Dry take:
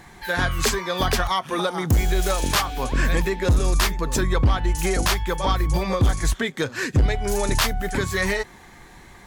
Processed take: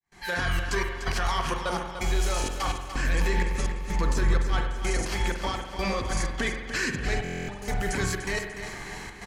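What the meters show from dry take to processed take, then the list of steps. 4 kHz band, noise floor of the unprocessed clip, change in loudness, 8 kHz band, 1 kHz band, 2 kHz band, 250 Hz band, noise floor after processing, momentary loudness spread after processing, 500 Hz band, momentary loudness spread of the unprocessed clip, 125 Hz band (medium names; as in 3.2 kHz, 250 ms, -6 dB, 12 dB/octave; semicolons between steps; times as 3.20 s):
-7.0 dB, -47 dBFS, -6.5 dB, -7.0 dB, -5.5 dB, -3.5 dB, -6.5 dB, -40 dBFS, 5 LU, -7.0 dB, 4 LU, -8.0 dB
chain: fade-in on the opening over 0.72 s; treble shelf 2.4 kHz +10.5 dB; band-stop 3.6 kHz, Q 7.7; compressor with a negative ratio -22 dBFS, ratio -0.5; peak limiter -19 dBFS, peak gain reduction 11.5 dB; hard clipper -22 dBFS, distortion -22 dB; trance gate ".xxxx.x." 127 bpm -24 dB; distance through air 51 m; feedback delay 295 ms, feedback 45%, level -9.5 dB; spring tank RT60 1.1 s, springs 45 ms, chirp 60 ms, DRR 5 dB; buffer glitch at 7.23 s, samples 1024, times 10; trim +1 dB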